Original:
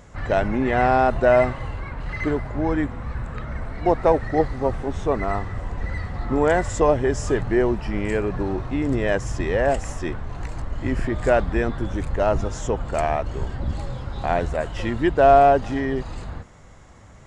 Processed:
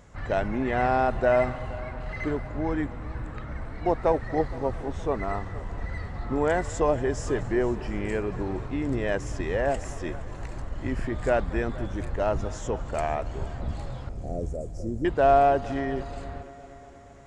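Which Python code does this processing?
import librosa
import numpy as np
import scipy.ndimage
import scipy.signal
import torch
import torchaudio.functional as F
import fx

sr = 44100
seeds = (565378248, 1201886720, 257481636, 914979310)

p1 = fx.cheby2_bandstop(x, sr, low_hz=940.0, high_hz=3600.0, order=4, stop_db=40, at=(14.09, 15.05))
p2 = p1 + fx.echo_heads(p1, sr, ms=234, heads='first and second', feedback_pct=59, wet_db=-21.0, dry=0)
y = F.gain(torch.from_numpy(p2), -5.5).numpy()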